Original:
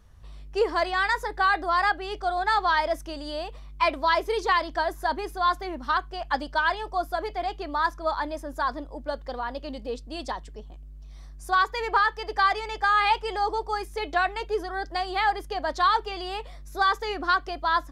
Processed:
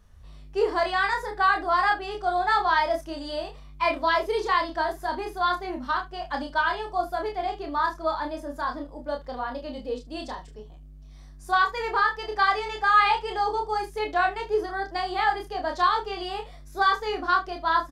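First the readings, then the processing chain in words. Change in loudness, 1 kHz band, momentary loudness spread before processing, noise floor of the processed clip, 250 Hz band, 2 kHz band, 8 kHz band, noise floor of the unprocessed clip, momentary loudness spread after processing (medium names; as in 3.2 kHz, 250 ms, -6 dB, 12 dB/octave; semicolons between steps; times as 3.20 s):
+0.5 dB, +0.5 dB, 11 LU, -45 dBFS, +1.0 dB, 0.0 dB, no reading, -43 dBFS, 11 LU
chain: harmonic-percussive split percussive -6 dB; early reflections 28 ms -4 dB, 40 ms -12 dB, 73 ms -16.5 dB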